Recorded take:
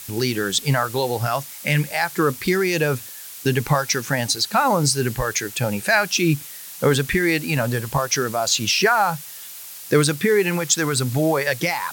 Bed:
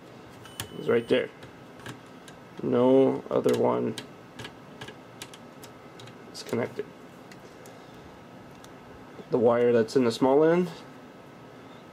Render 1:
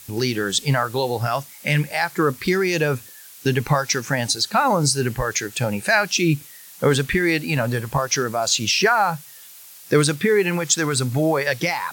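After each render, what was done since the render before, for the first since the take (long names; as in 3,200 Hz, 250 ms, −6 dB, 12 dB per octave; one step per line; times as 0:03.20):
noise reduction from a noise print 6 dB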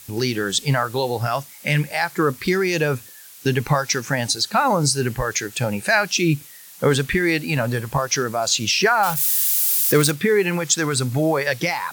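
0:09.03–0:10.11: spike at every zero crossing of −16.5 dBFS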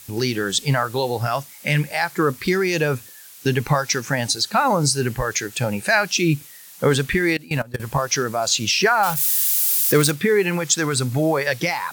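0:07.33–0:07.80: output level in coarse steps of 21 dB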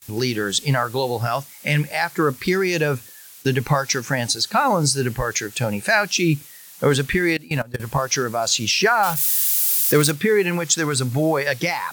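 noise gate with hold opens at −33 dBFS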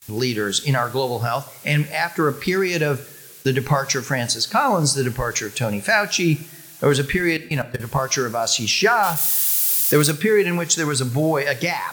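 coupled-rooms reverb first 0.54 s, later 2.8 s, from −20 dB, DRR 13 dB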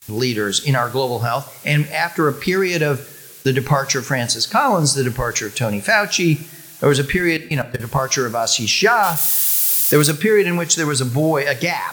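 level +2.5 dB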